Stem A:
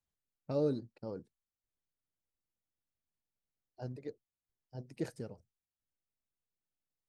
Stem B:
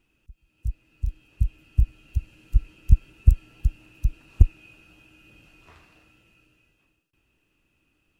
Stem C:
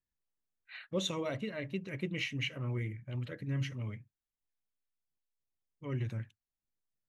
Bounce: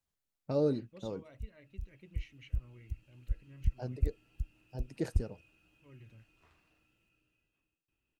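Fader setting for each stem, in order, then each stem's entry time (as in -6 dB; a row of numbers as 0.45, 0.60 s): +2.5, -15.0, -19.5 dB; 0.00, 0.75, 0.00 s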